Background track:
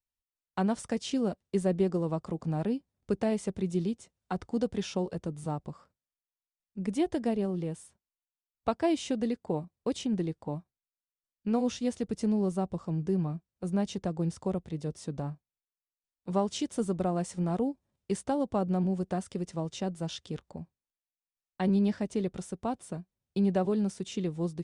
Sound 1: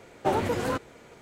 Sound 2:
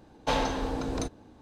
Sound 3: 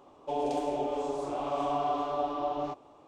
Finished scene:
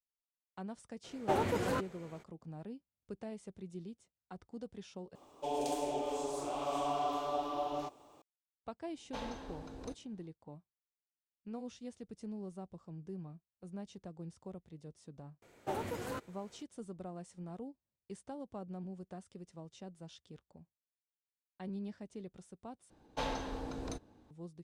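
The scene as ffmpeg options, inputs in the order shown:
-filter_complex "[1:a]asplit=2[a][b];[2:a]asplit=2[c][d];[0:a]volume=-16dB[e];[3:a]aemphasis=mode=production:type=75fm[f];[b]highshelf=f=9.4k:g=9[g];[e]asplit=3[h][i][j];[h]atrim=end=5.154[k];[f]atrim=end=3.07,asetpts=PTS-STARTPTS,volume=-4.5dB[l];[i]atrim=start=8.216:end=22.904[m];[d]atrim=end=1.41,asetpts=PTS-STARTPTS,volume=-10dB[n];[j]atrim=start=24.306[o];[a]atrim=end=1.21,asetpts=PTS-STARTPTS,volume=-6dB,afade=t=in:d=0.02,afade=t=out:st=1.19:d=0.02,adelay=1030[p];[c]atrim=end=1.41,asetpts=PTS-STARTPTS,volume=-16.5dB,afade=t=in:d=0.004:c=hsin,afade=t=out:st=1.406:d=0.004:c=hsin,adelay=8860[q];[g]atrim=end=1.21,asetpts=PTS-STARTPTS,volume=-12.5dB,afade=t=in:d=0.004:c=hsin,afade=t=out:st=1.206:d=0.004:c=hsin,adelay=15420[r];[k][l]acrossfade=d=0.004:c1=hsin:c2=hsin[s];[s][m]acrossfade=d=0.004:c1=hsin:c2=hsin[t];[t][n]acrossfade=d=0.004:c1=hsin:c2=hsin[u];[u][o]acrossfade=d=0.004:c1=hsin:c2=hsin[v];[v][p][q][r]amix=inputs=4:normalize=0"

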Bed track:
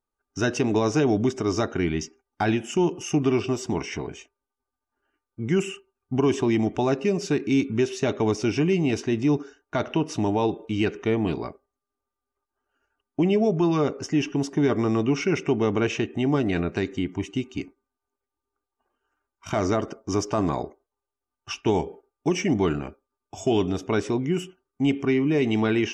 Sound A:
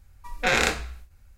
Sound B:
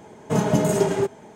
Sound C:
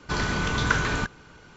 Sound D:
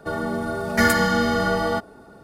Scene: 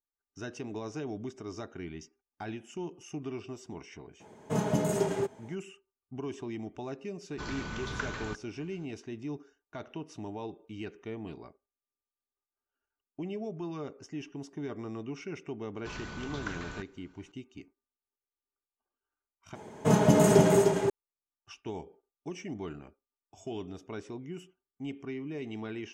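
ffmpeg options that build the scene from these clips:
-filter_complex "[2:a]asplit=2[a][b];[3:a]asplit=2[c][d];[0:a]volume=-16.5dB[e];[b]aecho=1:1:303:0.668[f];[e]asplit=2[g][h];[g]atrim=end=19.554[i];[f]atrim=end=1.35,asetpts=PTS-STARTPTS,volume=-2dB[j];[h]atrim=start=20.896[k];[a]atrim=end=1.35,asetpts=PTS-STARTPTS,volume=-8.5dB,afade=t=in:d=0.004:c=hsin,afade=t=out:st=1.346:d=0.004:c=hsin,adelay=4200[l];[c]atrim=end=1.56,asetpts=PTS-STARTPTS,volume=-13dB,afade=t=in:d=0.004:c=hsin,afade=t=out:st=1.556:d=0.004:c=hsin,adelay=7290[m];[d]atrim=end=1.56,asetpts=PTS-STARTPTS,volume=-16dB,afade=t=in:d=0.004:c=hsin,afade=t=out:st=1.556:d=0.004:c=hsin,adelay=15760[n];[i][j]acrossfade=d=0.004:c1=hsin:c2=hsin[o];[o][k]acrossfade=d=0.004:c1=hsin:c2=hsin[p];[p][l][m][n]amix=inputs=4:normalize=0"

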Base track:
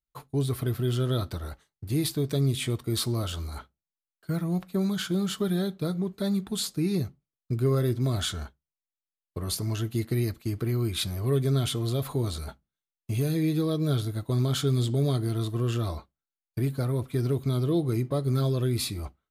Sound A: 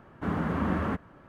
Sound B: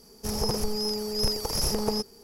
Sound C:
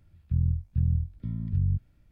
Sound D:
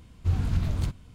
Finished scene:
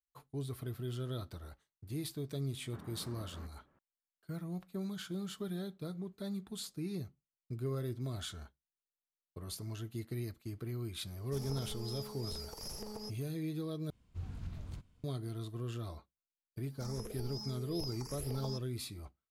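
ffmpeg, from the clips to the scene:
-filter_complex "[2:a]asplit=2[a][b];[0:a]volume=-13dB[c];[1:a]alimiter=level_in=0.5dB:limit=-24dB:level=0:latency=1:release=382,volume=-0.5dB[d];[a]alimiter=limit=-17.5dB:level=0:latency=1:release=71[e];[b]asplit=2[f][g];[g]afreqshift=1.8[h];[f][h]amix=inputs=2:normalize=1[i];[c]asplit=2[j][k];[j]atrim=end=13.904[l];[4:a]atrim=end=1.14,asetpts=PTS-STARTPTS,volume=-17.5dB[m];[k]atrim=start=15.036[n];[d]atrim=end=1.28,asetpts=PTS-STARTPTS,volume=-18dB,afade=t=in:d=0.004:c=hsin,afade=t=out:st=1.276:d=0.004:c=hsin,adelay=2510[o];[e]atrim=end=2.23,asetpts=PTS-STARTPTS,volume=-16dB,afade=t=in:d=0.004:c=hsin,afade=t=out:st=2.226:d=0.004:c=hsin,adelay=11080[p];[i]atrim=end=2.23,asetpts=PTS-STARTPTS,volume=-14.5dB,afade=t=in:d=0.004:c=hsin,afade=t=out:st=2.226:d=0.004:c=hsin,adelay=16560[q];[l][m]acrossfade=d=0.004:c1=hsin:c2=hsin[r];[r][n]acrossfade=d=0.004:c1=hsin:c2=hsin[s];[s][o][p][q]amix=inputs=4:normalize=0"

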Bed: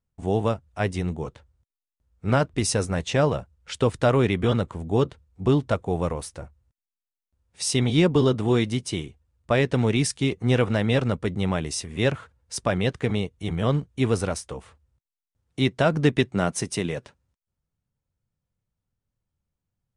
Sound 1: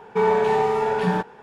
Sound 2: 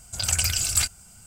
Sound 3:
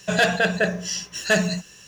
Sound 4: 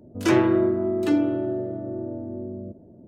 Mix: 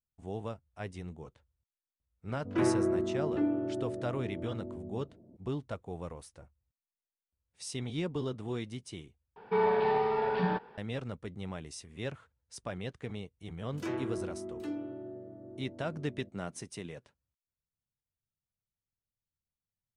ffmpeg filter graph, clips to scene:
-filter_complex "[4:a]asplit=2[a][b];[0:a]volume=-15.5dB[c];[a]lowpass=1.8k[d];[1:a]aresample=11025,aresample=44100[e];[c]asplit=2[f][g];[f]atrim=end=9.364[h];[e]atrim=end=1.42,asetpts=PTS-STARTPTS,volume=-8dB[i];[g]atrim=start=10.776[j];[d]atrim=end=3.07,asetpts=PTS-STARTPTS,volume=-9dB,afade=t=in:d=0.004:c=hsin,afade=t=out:st=3.066:d=0.004:c=hsin,adelay=2300[k];[b]atrim=end=3.07,asetpts=PTS-STARTPTS,volume=-17dB,afade=t=in:d=0.004:c=hsin,afade=t=out:st=3.066:d=0.004:c=hsin,adelay=13570[l];[h][i]acrossfade=d=0.004:c1=hsin:c2=hsin[m];[m][j]acrossfade=d=0.004:c1=hsin:c2=hsin[n];[n][k][l]amix=inputs=3:normalize=0"

